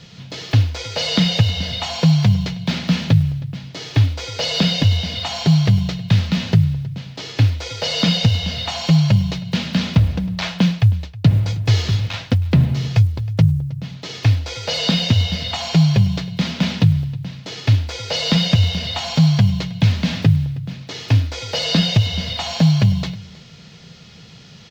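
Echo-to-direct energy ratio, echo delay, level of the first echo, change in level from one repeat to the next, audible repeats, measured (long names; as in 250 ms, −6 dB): −21.0 dB, 317 ms, −21.0 dB, repeats not evenly spaced, 1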